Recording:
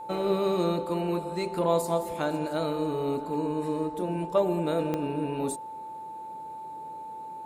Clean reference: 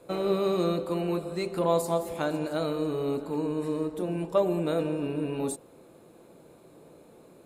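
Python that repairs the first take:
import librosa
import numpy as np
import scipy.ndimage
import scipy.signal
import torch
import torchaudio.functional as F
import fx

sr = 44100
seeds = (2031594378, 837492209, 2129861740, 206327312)

y = fx.fix_declick_ar(x, sr, threshold=10.0)
y = fx.notch(y, sr, hz=880.0, q=30.0)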